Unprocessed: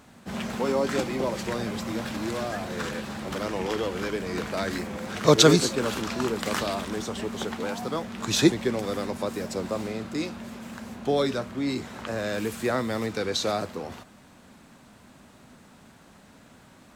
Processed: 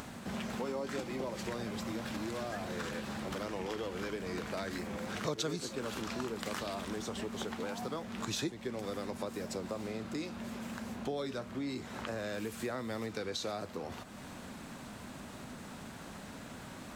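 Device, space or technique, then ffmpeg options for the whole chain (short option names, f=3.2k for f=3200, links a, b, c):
upward and downward compression: -af "acompressor=mode=upward:threshold=-33dB:ratio=2.5,acompressor=threshold=-32dB:ratio=4,volume=-3.5dB"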